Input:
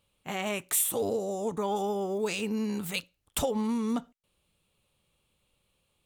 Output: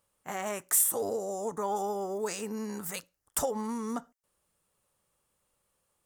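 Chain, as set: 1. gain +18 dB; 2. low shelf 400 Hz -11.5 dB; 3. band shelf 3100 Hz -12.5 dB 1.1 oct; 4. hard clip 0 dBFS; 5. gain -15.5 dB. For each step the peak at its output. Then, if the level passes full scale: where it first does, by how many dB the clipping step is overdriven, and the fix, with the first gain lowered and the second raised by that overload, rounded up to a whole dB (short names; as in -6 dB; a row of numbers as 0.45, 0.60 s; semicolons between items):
+4.0, +4.5, +5.0, 0.0, -15.5 dBFS; step 1, 5.0 dB; step 1 +13 dB, step 5 -10.5 dB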